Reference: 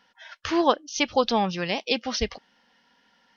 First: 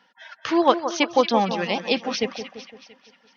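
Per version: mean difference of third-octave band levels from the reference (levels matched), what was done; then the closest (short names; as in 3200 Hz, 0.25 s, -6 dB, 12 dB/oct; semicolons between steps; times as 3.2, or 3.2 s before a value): 5.0 dB: reverb removal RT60 0.67 s; HPF 140 Hz 24 dB/oct; high shelf 4700 Hz -7.5 dB; split-band echo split 1600 Hz, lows 0.17 s, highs 0.227 s, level -10 dB; gain +3.5 dB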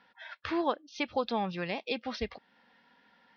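2.0 dB: HPF 62 Hz; compressor 1.5:1, threshold -42 dBFS, peak gain reduction 10 dB; LPF 4000 Hz 24 dB/oct; notch 3000 Hz, Q 8.1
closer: second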